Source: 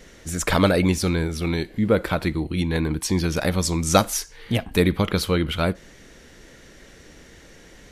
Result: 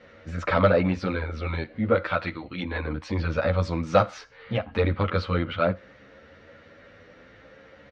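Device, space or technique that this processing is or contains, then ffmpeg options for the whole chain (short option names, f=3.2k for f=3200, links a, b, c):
barber-pole flanger into a guitar amplifier: -filter_complex "[0:a]asplit=2[a][b];[b]adelay=10.5,afreqshift=0.62[c];[a][c]amix=inputs=2:normalize=1,asoftclip=type=tanh:threshold=-13dB,highpass=87,equalizer=f=92:t=q:w=4:g=6,equalizer=f=160:t=q:w=4:g=-5,equalizer=f=370:t=q:w=4:g=-7,equalizer=f=540:t=q:w=4:g=9,equalizer=f=1.3k:t=q:w=4:g=8,equalizer=f=3.3k:t=q:w=4:g=-5,lowpass=f=3.7k:w=0.5412,lowpass=f=3.7k:w=1.3066,asettb=1/sr,asplit=3[d][e][f];[d]atrim=end=1.954[g];[e]atrim=start=1.95:end=2.63,asetpts=PTS-STARTPTS,afade=t=in:d=0.004:c=qsin,afade=t=out:st=0.676:d=0.004:c=qsin,tiltshelf=f=1.2k:g=-5.5[h];[f]atrim=start=2.626[i];[g][h]acrossfade=d=0.004:c1=hsin:c2=qsin[j];[j][i]acrossfade=d=0.004:c1=qsin:c2=hsin"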